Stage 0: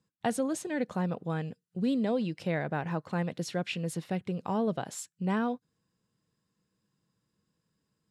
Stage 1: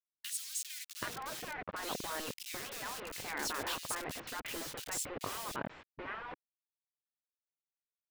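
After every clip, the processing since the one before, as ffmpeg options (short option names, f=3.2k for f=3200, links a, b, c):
-filter_complex "[0:a]acrusher=bits=6:mix=0:aa=0.000001,afftfilt=real='re*lt(hypot(re,im),0.0631)':imag='im*lt(hypot(re,im),0.0631)':win_size=1024:overlap=0.75,acrossover=split=2500[a][b];[a]adelay=780[c];[c][b]amix=inputs=2:normalize=0,volume=3dB"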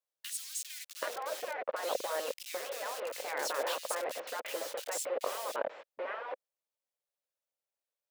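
-af "highpass=f=540:t=q:w=4.9"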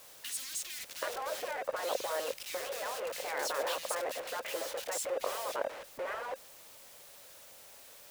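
-af "aeval=exprs='val(0)+0.5*0.00668*sgn(val(0))':c=same,volume=-1dB"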